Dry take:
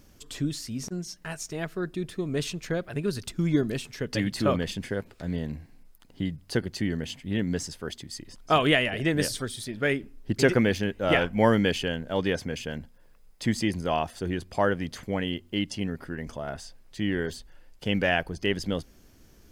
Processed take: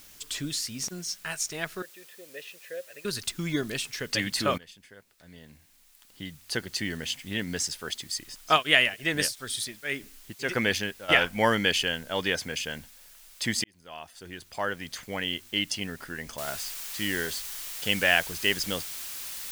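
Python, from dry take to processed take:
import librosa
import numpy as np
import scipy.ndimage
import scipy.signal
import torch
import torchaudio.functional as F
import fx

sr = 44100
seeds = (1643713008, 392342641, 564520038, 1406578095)

y = fx.vowel_filter(x, sr, vowel='e', at=(1.82, 3.05))
y = fx.tremolo_abs(y, sr, hz=fx.line((8.55, 3.3), (11.08, 1.2)), at=(8.55, 11.08), fade=0.02)
y = fx.noise_floor_step(y, sr, seeds[0], at_s=16.38, before_db=-60, after_db=-45, tilt_db=0.0)
y = fx.edit(y, sr, fx.fade_in_from(start_s=4.58, length_s=2.26, curve='qua', floor_db=-20.0),
    fx.fade_in_span(start_s=13.64, length_s=1.85), tone=tone)
y = fx.tilt_shelf(y, sr, db=-7.5, hz=870.0)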